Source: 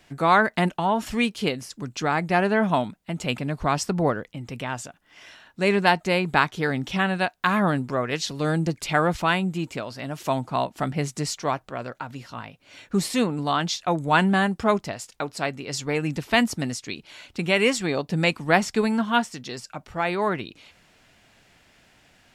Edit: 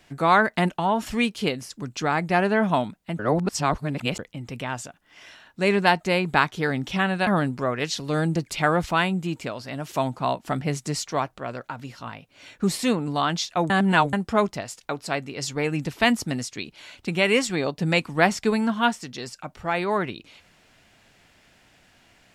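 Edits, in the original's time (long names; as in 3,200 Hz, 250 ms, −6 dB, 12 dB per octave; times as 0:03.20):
0:03.19–0:04.19: reverse
0:07.27–0:07.58: remove
0:14.01–0:14.44: reverse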